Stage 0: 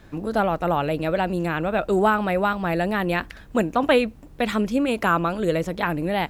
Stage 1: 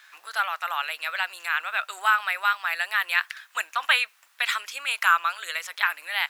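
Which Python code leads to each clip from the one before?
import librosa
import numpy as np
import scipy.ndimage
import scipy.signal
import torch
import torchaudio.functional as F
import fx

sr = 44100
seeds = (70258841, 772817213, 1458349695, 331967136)

y = scipy.signal.sosfilt(scipy.signal.butter(4, 1300.0, 'highpass', fs=sr, output='sos'), x)
y = y * librosa.db_to_amplitude(5.5)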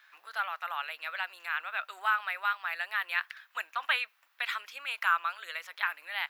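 y = fx.peak_eq(x, sr, hz=8200.0, db=-12.0, octaves=1.3)
y = y * librosa.db_to_amplitude(-6.5)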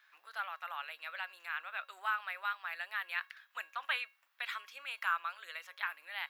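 y = fx.comb_fb(x, sr, f0_hz=550.0, decay_s=0.34, harmonics='all', damping=0.0, mix_pct=60)
y = y * librosa.db_to_amplitude(1.0)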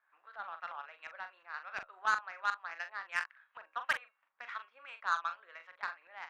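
y = fx.filter_lfo_lowpass(x, sr, shape='saw_up', hz=2.8, low_hz=840.0, high_hz=2200.0, q=0.89)
y = fx.cheby_harmonics(y, sr, harmonics=(7,), levels_db=(-23,), full_scale_db=-20.5)
y = fx.doubler(y, sr, ms=42.0, db=-9.0)
y = y * librosa.db_to_amplitude(4.0)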